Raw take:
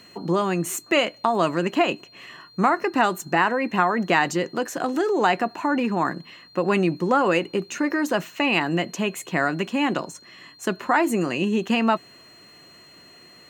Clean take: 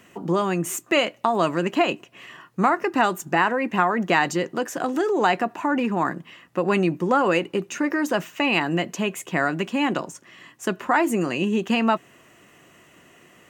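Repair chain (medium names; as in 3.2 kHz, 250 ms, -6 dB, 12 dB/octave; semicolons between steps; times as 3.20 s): band-stop 4.2 kHz, Q 30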